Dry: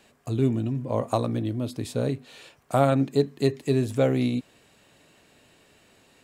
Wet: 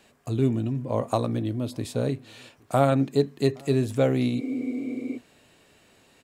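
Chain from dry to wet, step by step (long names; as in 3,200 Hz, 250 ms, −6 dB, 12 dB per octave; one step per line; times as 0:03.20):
slap from a distant wall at 140 metres, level −27 dB
healed spectral selection 0:04.41–0:05.15, 240–2,400 Hz before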